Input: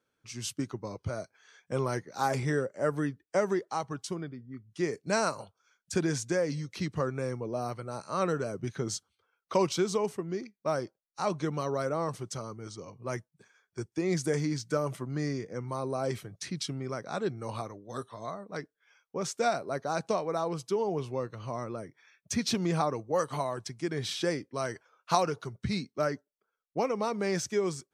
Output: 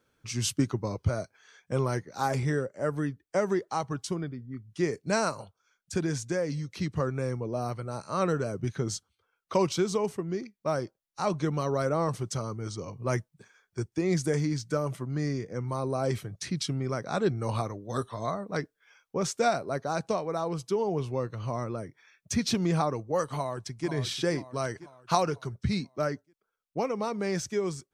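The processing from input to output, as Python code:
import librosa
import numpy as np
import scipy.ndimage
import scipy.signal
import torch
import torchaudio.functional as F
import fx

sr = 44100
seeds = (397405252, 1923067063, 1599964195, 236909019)

y = fx.echo_throw(x, sr, start_s=23.34, length_s=0.54, ms=490, feedback_pct=50, wet_db=-11.0)
y = fx.low_shelf(y, sr, hz=100.0, db=11.0)
y = fx.rider(y, sr, range_db=10, speed_s=2.0)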